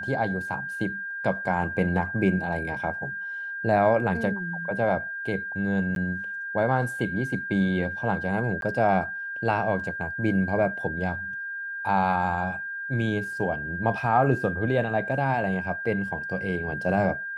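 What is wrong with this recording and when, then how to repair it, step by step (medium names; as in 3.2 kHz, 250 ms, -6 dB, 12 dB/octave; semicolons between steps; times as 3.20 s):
whine 1.6 kHz -31 dBFS
5.95–5.96 s: dropout 12 ms
8.61–8.62 s: dropout 12 ms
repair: band-stop 1.6 kHz, Q 30; interpolate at 5.95 s, 12 ms; interpolate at 8.61 s, 12 ms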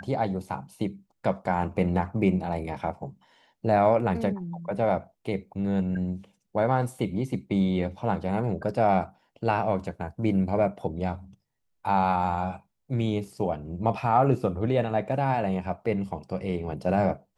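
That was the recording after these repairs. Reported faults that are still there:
nothing left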